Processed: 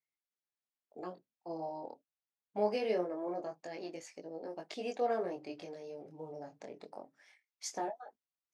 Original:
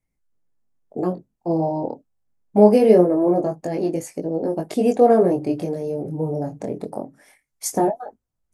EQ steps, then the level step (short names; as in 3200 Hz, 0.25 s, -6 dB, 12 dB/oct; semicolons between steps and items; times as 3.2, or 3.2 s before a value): band-pass 6000 Hz, Q 0.65; air absorption 210 m; high shelf 6900 Hz +5 dB; 0.0 dB